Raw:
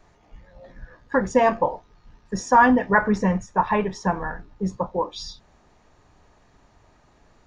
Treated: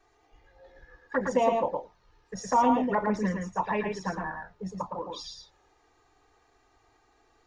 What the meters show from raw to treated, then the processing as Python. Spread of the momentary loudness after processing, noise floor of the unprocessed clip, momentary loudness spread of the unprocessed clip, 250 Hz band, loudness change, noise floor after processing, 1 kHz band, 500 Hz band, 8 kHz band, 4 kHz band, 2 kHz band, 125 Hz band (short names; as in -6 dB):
16 LU, -58 dBFS, 16 LU, -7.0 dB, -7.0 dB, -66 dBFS, -7.0 dB, -5.5 dB, -5.5 dB, -4.5 dB, -11.5 dB, -8.5 dB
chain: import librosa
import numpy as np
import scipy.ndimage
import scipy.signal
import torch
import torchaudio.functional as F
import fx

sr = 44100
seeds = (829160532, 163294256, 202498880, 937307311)

p1 = fx.low_shelf(x, sr, hz=170.0, db=-11.5)
p2 = fx.env_flanger(p1, sr, rest_ms=2.6, full_db=-16.5)
p3 = p2 + fx.echo_single(p2, sr, ms=113, db=-4.0, dry=0)
y = p3 * 10.0 ** (-3.5 / 20.0)